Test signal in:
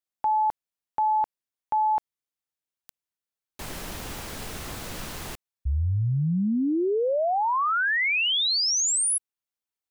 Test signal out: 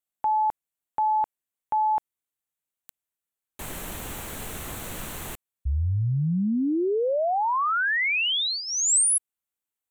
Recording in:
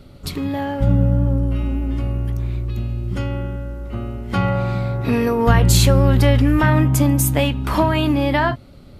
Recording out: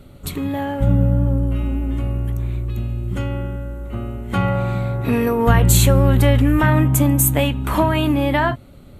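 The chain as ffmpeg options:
-af "equalizer=f=5k:t=o:w=0.33:g=-12,equalizer=f=8k:t=o:w=0.33:g=5,equalizer=f=12.5k:t=o:w=0.33:g=7"

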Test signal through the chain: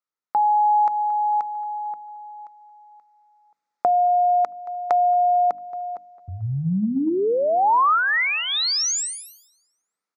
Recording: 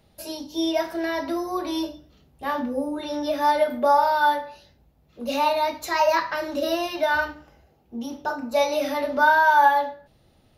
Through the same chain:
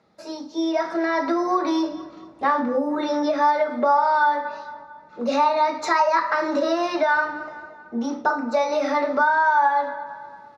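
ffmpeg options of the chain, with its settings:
-filter_complex "[0:a]bandreject=f=50:t=h:w=6,bandreject=f=100:t=h:w=6,bandreject=f=150:t=h:w=6,bandreject=f=200:t=h:w=6,bandreject=f=250:t=h:w=6,bandreject=f=300:t=h:w=6,asplit=2[a][b];[b]adelay=225,lowpass=f=4.6k:p=1,volume=-21.5dB,asplit=2[c][d];[d]adelay=225,lowpass=f=4.6k:p=1,volume=0.51,asplit=2[e][f];[f]adelay=225,lowpass=f=4.6k:p=1,volume=0.51,asplit=2[g][h];[h]adelay=225,lowpass=f=4.6k:p=1,volume=0.51[i];[a][c][e][g][i]amix=inputs=5:normalize=0,dynaudnorm=f=310:g=7:m=9.5dB,highpass=160,equalizer=f=200:t=q:w=4:g=6,equalizer=f=310:t=q:w=4:g=4,equalizer=f=470:t=q:w=4:g=4,equalizer=f=1.3k:t=q:w=4:g=9,equalizer=f=2k:t=q:w=4:g=5,equalizer=f=3k:t=q:w=4:g=-9,lowpass=f=6.8k:w=0.5412,lowpass=f=6.8k:w=1.3066,acompressor=threshold=-17dB:ratio=5,equalizer=f=930:t=o:w=0.92:g=5,volume=-3dB"

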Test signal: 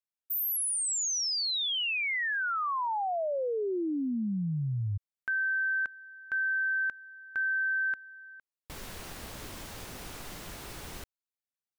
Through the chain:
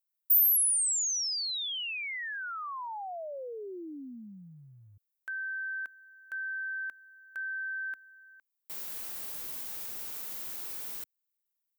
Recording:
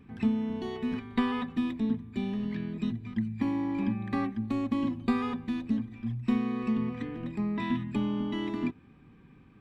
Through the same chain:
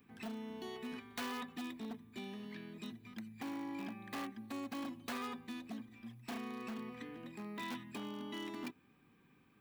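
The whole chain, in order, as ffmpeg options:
-filter_complex "[0:a]acrossover=split=230|1600[a][b][c];[a]acompressor=threshold=-38dB:ratio=5:attack=0.17:release=228:knee=2.83:detection=peak[d];[d][b][c]amix=inputs=3:normalize=0,aeval=exprs='0.0501*(abs(mod(val(0)/0.0501+3,4)-2)-1)':c=same,aemphasis=mode=production:type=bsi,volume=-7.5dB"

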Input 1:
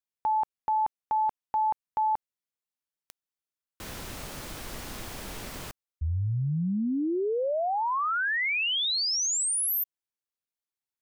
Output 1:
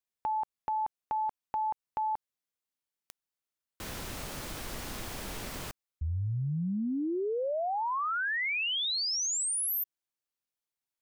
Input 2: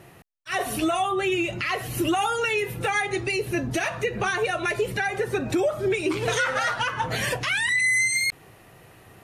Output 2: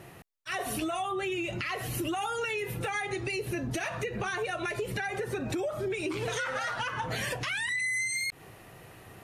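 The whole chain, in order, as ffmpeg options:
-af "acompressor=threshold=-29dB:ratio=6:attack=5.3:release=134:knee=6:detection=rms"

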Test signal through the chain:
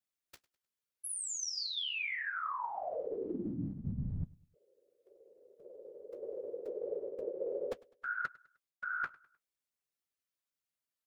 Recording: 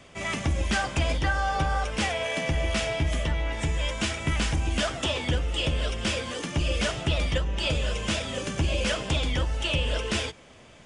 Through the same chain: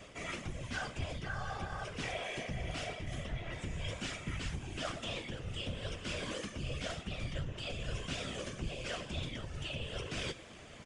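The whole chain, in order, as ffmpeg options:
-filter_complex "[0:a]acrossover=split=7600[a][b];[b]acompressor=threshold=-46dB:ratio=4:attack=1:release=60[c];[a][c]amix=inputs=2:normalize=0,equalizer=f=870:t=o:w=0.27:g=-7.5,areverse,acompressor=threshold=-36dB:ratio=10,areverse,flanger=delay=6.7:depth=9.4:regen=-40:speed=1.7:shape=sinusoidal,asoftclip=type=hard:threshold=-28dB,afftfilt=real='hypot(re,im)*cos(2*PI*random(0))':imag='hypot(re,im)*sin(2*PI*random(1))':win_size=512:overlap=0.75,asplit=2[d][e];[e]aecho=0:1:102|204|306:0.075|0.0307|0.0126[f];[d][f]amix=inputs=2:normalize=0,volume=9.5dB"

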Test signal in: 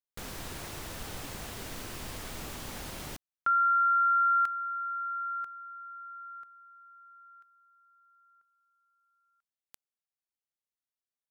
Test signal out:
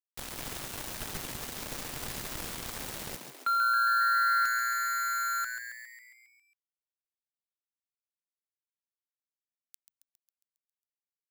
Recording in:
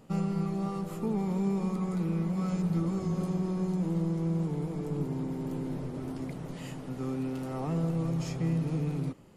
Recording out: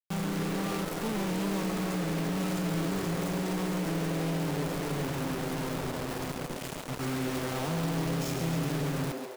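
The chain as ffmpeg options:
-filter_complex "[0:a]acrossover=split=150|430|1800[a][b][c][d];[b]asoftclip=type=tanh:threshold=-34.5dB[e];[a][e][c][d]amix=inputs=4:normalize=0,acrusher=bits=5:mix=0:aa=0.000001,volume=25dB,asoftclip=hard,volume=-25dB,asplit=9[f][g][h][i][j][k][l][m][n];[g]adelay=136,afreqshift=120,volume=-7dB[o];[h]adelay=272,afreqshift=240,volume=-11.4dB[p];[i]adelay=408,afreqshift=360,volume=-15.9dB[q];[j]adelay=544,afreqshift=480,volume=-20.3dB[r];[k]adelay=680,afreqshift=600,volume=-24.7dB[s];[l]adelay=816,afreqshift=720,volume=-29.2dB[t];[m]adelay=952,afreqshift=840,volume=-33.6dB[u];[n]adelay=1088,afreqshift=960,volume=-38.1dB[v];[f][o][p][q][r][s][t][u][v]amix=inputs=9:normalize=0"

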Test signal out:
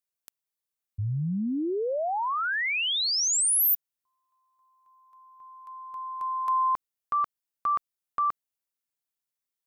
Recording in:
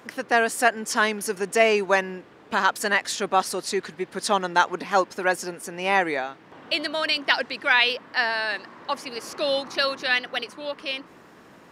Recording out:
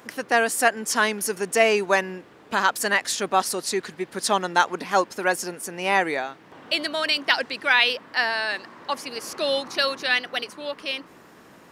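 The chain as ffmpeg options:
-af "highshelf=f=7.6k:g=7.5"

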